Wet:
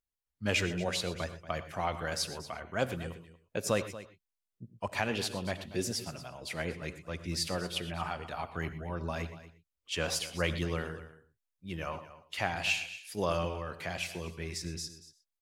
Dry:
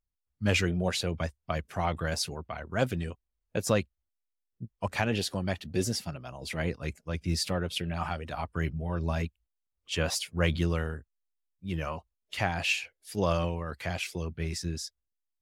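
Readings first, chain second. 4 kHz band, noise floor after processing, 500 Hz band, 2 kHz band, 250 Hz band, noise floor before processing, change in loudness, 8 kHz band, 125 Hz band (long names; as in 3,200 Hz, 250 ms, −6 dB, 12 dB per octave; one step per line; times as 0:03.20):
−1.5 dB, below −85 dBFS, −3.0 dB, −1.5 dB, −5.5 dB, −84 dBFS, −3.5 dB, −1.5 dB, −7.0 dB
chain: low-shelf EQ 210 Hz −8 dB
on a send: single-tap delay 234 ms −15.5 dB
on the sum: reverb whose tail is shaped and stops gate 140 ms rising, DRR 12 dB
level −2 dB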